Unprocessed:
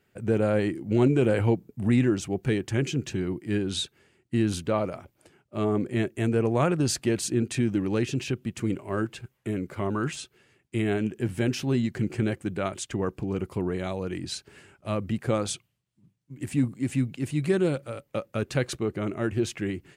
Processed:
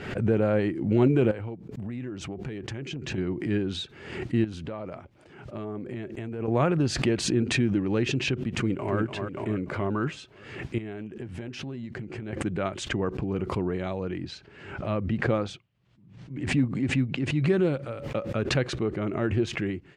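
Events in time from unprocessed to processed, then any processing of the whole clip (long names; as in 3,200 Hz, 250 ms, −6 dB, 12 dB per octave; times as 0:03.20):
0:01.31–0:03.18: downward compressor 10 to 1, threshold −31 dBFS
0:04.44–0:06.48: downward compressor 5 to 1, threshold −32 dBFS
0:08.59–0:08.99: delay throw 290 ms, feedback 45%, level −5.5 dB
0:10.78–0:12.33: downward compressor 8 to 1, threshold −33 dBFS
0:14.06–0:17.47: high-frequency loss of the air 59 metres
whole clip: Bessel low-pass filter 3,200 Hz, order 2; background raised ahead of every attack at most 66 dB per second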